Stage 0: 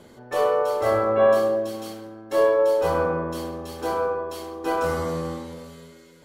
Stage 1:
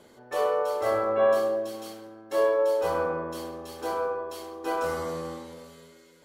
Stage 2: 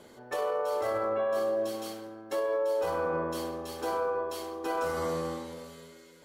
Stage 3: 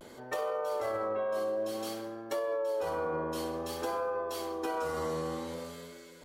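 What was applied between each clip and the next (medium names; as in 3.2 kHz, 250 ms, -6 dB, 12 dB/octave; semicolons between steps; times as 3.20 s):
tone controls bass -7 dB, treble +1 dB; trim -4 dB
peak limiter -24 dBFS, peak gain reduction 11.5 dB; trim +1.5 dB
compression 2.5:1, threshold -36 dBFS, peak gain reduction 7 dB; vibrato 0.55 Hz 50 cents; trim +3 dB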